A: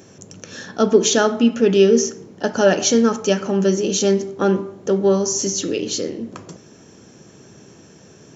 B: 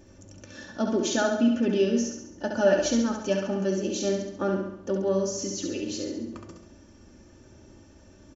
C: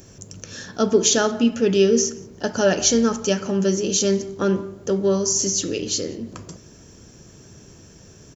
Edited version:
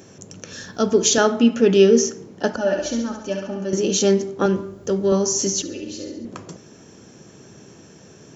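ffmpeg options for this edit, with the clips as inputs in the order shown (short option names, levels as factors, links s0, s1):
-filter_complex "[2:a]asplit=2[s0][s1];[1:a]asplit=2[s2][s3];[0:a]asplit=5[s4][s5][s6][s7][s8];[s4]atrim=end=0.532[s9];[s0]atrim=start=0.528:end=1.182[s10];[s5]atrim=start=1.178:end=2.562[s11];[s2]atrim=start=2.558:end=3.732[s12];[s6]atrim=start=3.728:end=4.462[s13];[s1]atrim=start=4.458:end=5.122[s14];[s7]atrim=start=5.118:end=5.622[s15];[s3]atrim=start=5.618:end=6.252[s16];[s8]atrim=start=6.248[s17];[s9][s10]acrossfade=d=0.004:c1=hsin:c2=hsin[s18];[s18][s11]acrossfade=d=0.004:c1=hsin:c2=hsin[s19];[s19][s12]acrossfade=d=0.004:c1=hsin:c2=hsin[s20];[s20][s13]acrossfade=d=0.004:c1=hsin:c2=hsin[s21];[s21][s14]acrossfade=d=0.004:c1=hsin:c2=hsin[s22];[s22][s15]acrossfade=d=0.004:c1=hsin:c2=hsin[s23];[s23][s16]acrossfade=d=0.004:c1=hsin:c2=hsin[s24];[s24][s17]acrossfade=d=0.004:c1=hsin:c2=hsin"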